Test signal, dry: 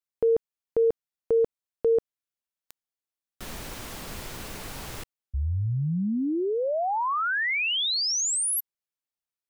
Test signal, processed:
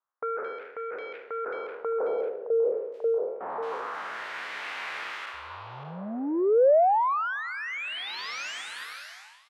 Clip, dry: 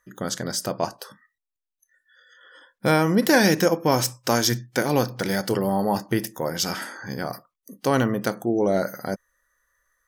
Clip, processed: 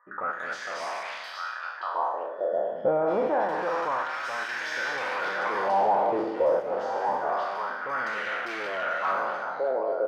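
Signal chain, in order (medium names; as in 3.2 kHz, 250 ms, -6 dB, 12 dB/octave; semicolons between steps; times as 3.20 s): spectral sustain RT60 0.95 s; on a send: repeats whose band climbs or falls 578 ms, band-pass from 3.2 kHz, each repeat -1.4 oct, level -5 dB; on the sum: overdrive pedal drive 34 dB, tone 1.5 kHz, clips at -1 dBFS; wah-wah 0.27 Hz 540–2000 Hz, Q 2.2; bands offset in time lows, highs 220 ms, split 1.8 kHz; trim -9 dB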